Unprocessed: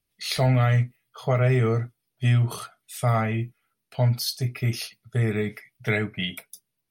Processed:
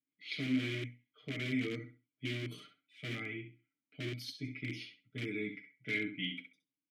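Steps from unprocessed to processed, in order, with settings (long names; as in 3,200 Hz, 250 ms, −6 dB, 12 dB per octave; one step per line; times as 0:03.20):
parametric band 13,000 Hz +13 dB 0.73 octaves
notch filter 1,800 Hz, Q 11
on a send: repeating echo 66 ms, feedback 23%, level −8.5 dB
on the sum: low-pass that shuts in the quiet parts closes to 1,700 Hz, open at −16 dBFS
comb filter 6.6 ms, depth 79%
in parallel at −4 dB: wrap-around overflow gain 13 dB
on the sum: formant filter i
low-shelf EQ 92 Hz −5 dB
level −4 dB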